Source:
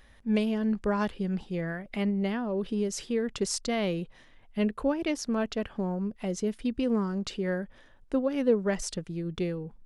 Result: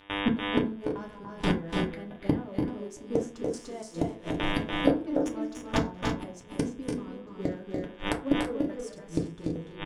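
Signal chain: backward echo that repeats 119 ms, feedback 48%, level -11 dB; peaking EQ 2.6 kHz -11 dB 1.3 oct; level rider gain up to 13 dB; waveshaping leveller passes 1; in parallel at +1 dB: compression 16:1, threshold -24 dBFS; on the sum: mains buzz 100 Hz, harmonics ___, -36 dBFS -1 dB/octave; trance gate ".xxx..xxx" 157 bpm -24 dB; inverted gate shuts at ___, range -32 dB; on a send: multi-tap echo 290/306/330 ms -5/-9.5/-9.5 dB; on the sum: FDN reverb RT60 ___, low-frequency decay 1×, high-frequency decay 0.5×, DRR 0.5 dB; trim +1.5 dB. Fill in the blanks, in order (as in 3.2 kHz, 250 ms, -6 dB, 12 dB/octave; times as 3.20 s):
37, -14 dBFS, 0.38 s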